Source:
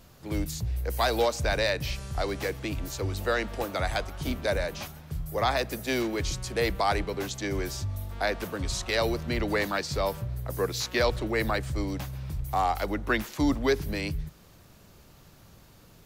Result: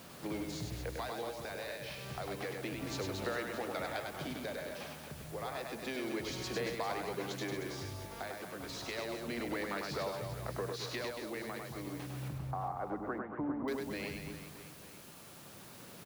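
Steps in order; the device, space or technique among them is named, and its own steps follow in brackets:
medium wave at night (band-pass filter 170–4,300 Hz; downward compressor 5 to 1, threshold −43 dBFS, peak gain reduction 20 dB; amplitude tremolo 0.3 Hz, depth 47%; steady tone 10,000 Hz −77 dBFS; white noise bed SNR 16 dB)
0:12.28–0:13.68: inverse Chebyshev low-pass filter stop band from 6,100 Hz, stop band 70 dB
reverse bouncing-ball delay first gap 100 ms, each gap 1.3×, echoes 5
level +5 dB

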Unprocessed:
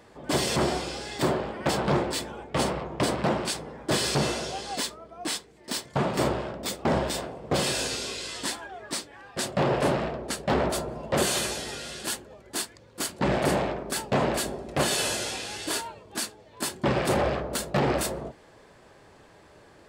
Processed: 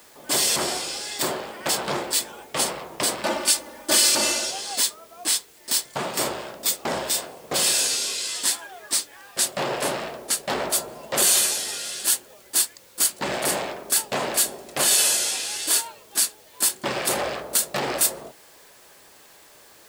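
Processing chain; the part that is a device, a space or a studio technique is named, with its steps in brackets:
turntable without a phono preamp (RIAA equalisation recording; white noise bed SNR 28 dB)
0:03.23–0:04.51: comb filter 3.4 ms, depth 85%

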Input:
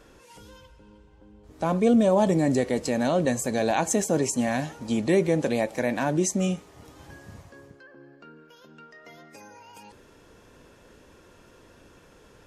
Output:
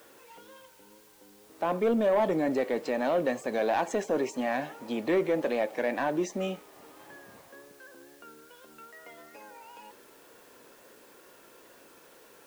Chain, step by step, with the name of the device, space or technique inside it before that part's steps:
tape answering machine (band-pass filter 340–2,900 Hz; soft clipping −18 dBFS, distortion −17 dB; tape wow and flutter; white noise bed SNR 28 dB)

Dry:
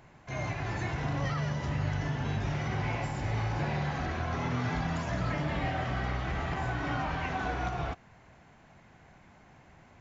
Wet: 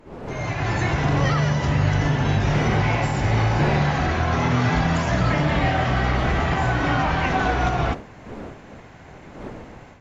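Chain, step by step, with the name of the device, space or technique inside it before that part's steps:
smartphone video outdoors (wind on the microphone 480 Hz −45 dBFS; automatic gain control gain up to 11.5 dB; AAC 64 kbit/s 44,100 Hz)

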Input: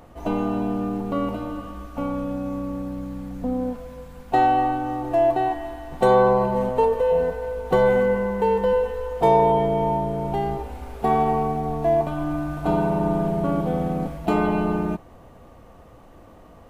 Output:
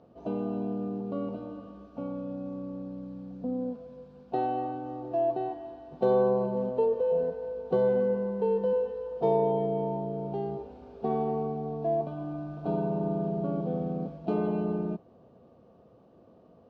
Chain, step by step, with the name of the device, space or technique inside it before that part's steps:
kitchen radio (loudspeaker in its box 180–3,700 Hz, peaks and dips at 300 Hz −7 dB, 660 Hz +6 dB, 2,000 Hz −10 dB)
flat-topped bell 1,500 Hz −12.5 dB 2.9 octaves
level −3 dB

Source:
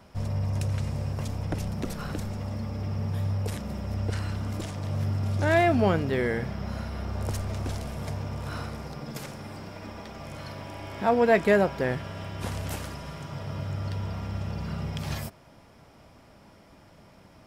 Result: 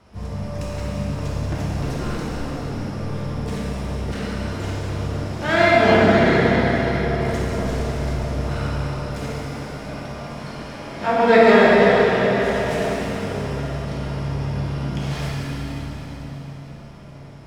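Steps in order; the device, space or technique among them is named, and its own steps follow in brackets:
low-pass filter 8,000 Hz 12 dB per octave
dynamic equaliser 2,200 Hz, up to +6 dB, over −44 dBFS, Q 1
feedback echo with a low-pass in the loop 65 ms, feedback 61%, low-pass 1,400 Hz, level −3.5 dB
shimmer-style reverb (pitch-shifted copies added +12 semitones −12 dB; convolution reverb RT60 5.1 s, pre-delay 4 ms, DRR −7.5 dB)
level −2 dB

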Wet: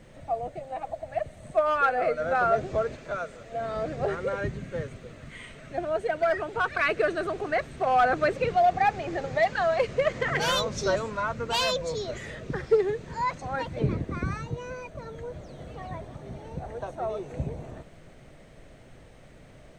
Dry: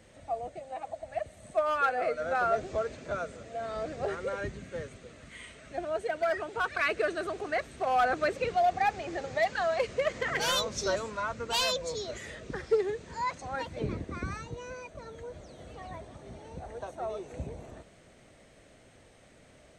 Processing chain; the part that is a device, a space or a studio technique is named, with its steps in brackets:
0:02.96–0:03.52: low-shelf EQ 400 Hz −10 dB
car interior (parametric band 140 Hz +7 dB 0.59 octaves; high-shelf EQ 4,300 Hz −8 dB; brown noise bed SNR 25 dB)
level +4.5 dB

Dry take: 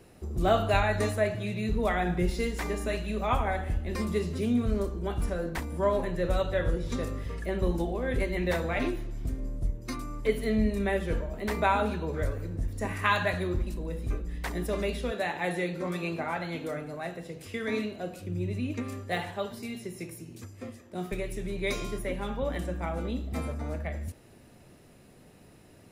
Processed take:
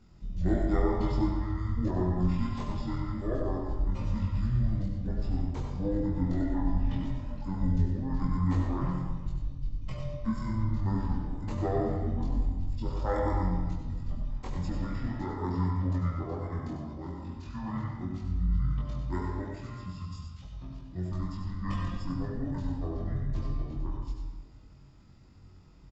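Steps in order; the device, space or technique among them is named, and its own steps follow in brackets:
monster voice (pitch shifter −12 semitones; low-shelf EQ 200 Hz +7.5 dB; single-tap delay 97 ms −9 dB; convolution reverb RT60 1.3 s, pre-delay 69 ms, DRR 2.5 dB)
double-tracking delay 22 ms −2 dB
level −9 dB

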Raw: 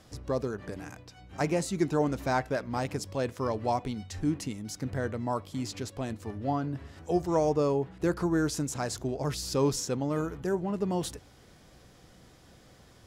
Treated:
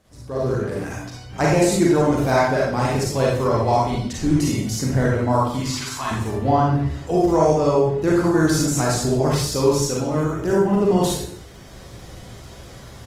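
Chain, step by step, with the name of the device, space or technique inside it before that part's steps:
0:05.60–0:06.11: low shelf with overshoot 700 Hz −13 dB, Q 3
speakerphone in a meeting room (convolution reverb RT60 0.60 s, pre-delay 34 ms, DRR −4 dB; far-end echo of a speakerphone 160 ms, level −27 dB; automatic gain control gain up to 14 dB; level −4 dB; Opus 24 kbit/s 48,000 Hz)

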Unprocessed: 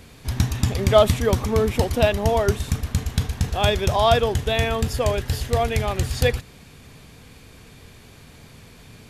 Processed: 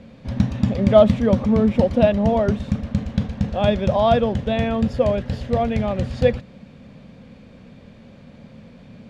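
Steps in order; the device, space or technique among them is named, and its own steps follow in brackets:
inside a cardboard box (low-pass filter 3,800 Hz 12 dB per octave; hollow resonant body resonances 210/540 Hz, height 16 dB, ringing for 40 ms)
level −5 dB

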